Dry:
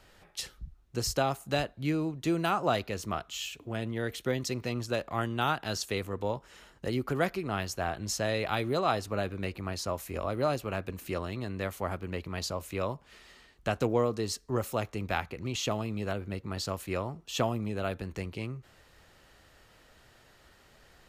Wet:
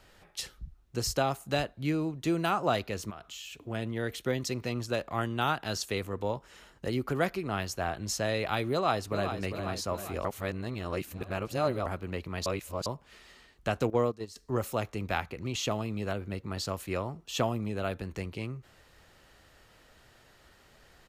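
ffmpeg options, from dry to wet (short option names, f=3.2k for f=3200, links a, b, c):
-filter_complex "[0:a]asettb=1/sr,asplit=3[a][b][c];[a]atrim=end=3.104[d];[b]atrim=start=3.1:end=3.67,asetpts=PTS-STARTPTS,afade=t=in:d=0.004:c=qsin,afade=t=out:st=0.566:d=0.004:c=qsin,acompressor=threshold=-39dB:ratio=12:attack=3.2:release=140:knee=1:detection=peak[e];[c]atrim=start=3.666[f];[d][e]acrossfade=d=0.004:c1=hsin:c2=qsin[g];[g][f]acrossfade=d=0.004:c1=qsin:c2=hsin,asplit=2[h][i];[i]afade=t=in:st=8.71:d=0.01,afade=t=out:st=9.4:d=0.01,aecho=0:1:400|800|1200|1600|2000|2400|2800|3200:0.375837|0.225502|0.135301|0.0811809|0.0487085|0.0292251|0.0175351|0.010521[j];[h][j]amix=inputs=2:normalize=0,asettb=1/sr,asplit=3[k][l][m];[k]atrim=end=13.904[n];[l]atrim=start=13.9:end=14.36,asetpts=PTS-STARTPTS,afade=t=in:d=0.004:c=qsin,afade=t=out:st=0.456:d=0.004:c=qsin,agate=range=-15dB:threshold=-30dB:ratio=16:release=100:detection=peak[o];[m]atrim=start=14.356[p];[n][o]acrossfade=d=0.004:c1=hsin:c2=qsin[q];[q][p]acrossfade=d=0.004:c1=qsin:c2=hsin,asplit=5[r][s][t][u][v];[r]atrim=end=10.252[w];[s]atrim=start=10.248:end=11.862,asetpts=PTS-STARTPTS,areverse[x];[t]atrim=start=11.858:end=12.462[y];[u]atrim=start=12.458:end=12.862,asetpts=PTS-STARTPTS,areverse[z];[v]atrim=start=12.858[aa];[w][x]acrossfade=d=0.004:c1=hsin:c2=hsin[ab];[ab][y]acrossfade=d=0.004:c1=hsin:c2=hsin[ac];[ac][z]acrossfade=d=0.004:c1=hsin:c2=hsin[ad];[ad][aa]acrossfade=d=0.004:c1=hsin:c2=hsin"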